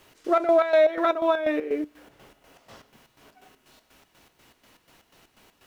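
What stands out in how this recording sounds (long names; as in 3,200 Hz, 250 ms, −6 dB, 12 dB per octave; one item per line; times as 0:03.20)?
a quantiser's noise floor 12 bits, dither triangular
chopped level 4.1 Hz, depth 65%, duty 55%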